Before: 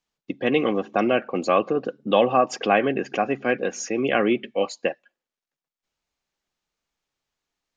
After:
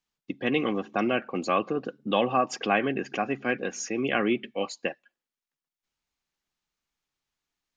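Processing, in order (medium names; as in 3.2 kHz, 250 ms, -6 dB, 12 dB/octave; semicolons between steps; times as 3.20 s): peaking EQ 550 Hz -5.5 dB 1 oct; trim -2.5 dB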